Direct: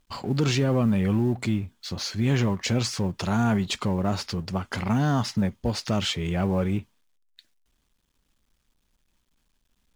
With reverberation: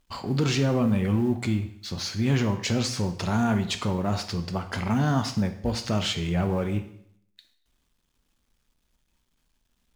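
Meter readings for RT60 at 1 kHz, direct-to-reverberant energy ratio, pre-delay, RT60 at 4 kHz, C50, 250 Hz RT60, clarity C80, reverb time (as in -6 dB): 0.70 s, 7.5 dB, 6 ms, 0.65 s, 11.5 dB, 0.70 s, 14.5 dB, 0.70 s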